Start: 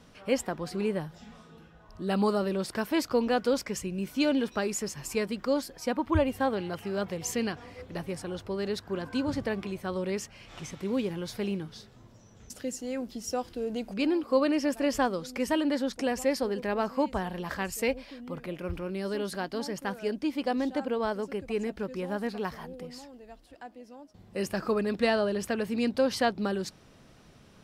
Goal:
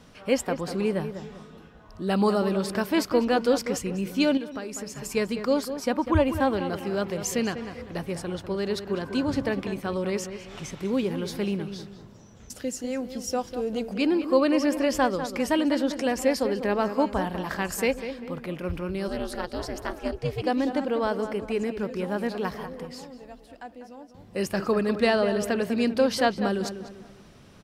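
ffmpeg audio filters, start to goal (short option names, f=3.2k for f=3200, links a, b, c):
-filter_complex "[0:a]asplit=2[a][b];[b]adelay=197,lowpass=f=2.3k:p=1,volume=-9.5dB,asplit=2[c][d];[d]adelay=197,lowpass=f=2.3k:p=1,volume=0.39,asplit=2[e][f];[f]adelay=197,lowpass=f=2.3k:p=1,volume=0.39,asplit=2[g][h];[h]adelay=197,lowpass=f=2.3k:p=1,volume=0.39[i];[c][e][g][i]amix=inputs=4:normalize=0[j];[a][j]amix=inputs=2:normalize=0,asettb=1/sr,asplit=3[k][l][m];[k]atrim=end=4.374[n];[l]atrim=start=4.37:end=5.15,asetpts=PTS-STARTPTS,afade=t=in:d=0.004:c=qsin,afade=t=out:st=0.776:d=0.004:c=qsin,acompressor=threshold=-35dB:ratio=6[o];[m]atrim=start=5.146[p];[n][o]acrossfade=d=0.004:c1=hsin:c2=qsin[q];[q][p]acrossfade=d=0.004:c1=qsin:c2=hsin,asplit=3[r][s][t];[r]afade=t=out:st=19.07:d=0.02[u];[s]aeval=exprs='val(0)*sin(2*PI*170*n/s)':c=same,afade=t=in:st=19.07:d=0.02,afade=t=out:st=20.41:d=0.02[v];[t]afade=t=in:st=20.41:d=0.02[w];[u][v][w]amix=inputs=3:normalize=0,volume=3.5dB"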